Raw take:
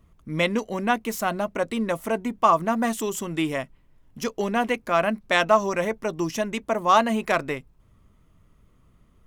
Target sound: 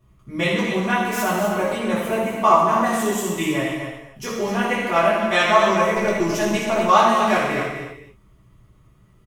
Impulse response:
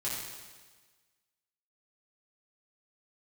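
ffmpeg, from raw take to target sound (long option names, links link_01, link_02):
-filter_complex "[0:a]aecho=1:1:252:0.355[link_01];[1:a]atrim=start_sample=2205,afade=type=out:start_time=0.38:duration=0.01,atrim=end_sample=17199[link_02];[link_01][link_02]afir=irnorm=-1:irlink=0,asettb=1/sr,asplit=3[link_03][link_04][link_05];[link_03]atrim=end=5.964[link_06];[link_04]atrim=start=5.96:end=6.9,asetpts=PTS-STARTPTS,afade=type=in:duration=0.004:curve=qsin,afade=type=out:start_time=0.936:duration=0.004:curve=qsin,aeval=exprs='0.355*(cos(1*acos(clip(val(0)/0.355,-1,1)))-cos(1*PI/2))+0.0447*(cos(5*acos(clip(val(0)/0.355,-1,1)))-cos(5*PI/2))+0.0224*(cos(7*acos(clip(val(0)/0.355,-1,1)))-cos(7*PI/2))+0.0158*(cos(8*acos(clip(val(0)/0.355,-1,1)))-cos(8*PI/2))':channel_layout=same[link_07];[link_05]atrim=start=6.896[link_08];[link_06][link_07]acrossfade=duration=0.004:curve1=hsin:curve2=qsin[link_09];[link_09][link_08]acrossfade=duration=0.004:curve1=qsin:curve2=hsin"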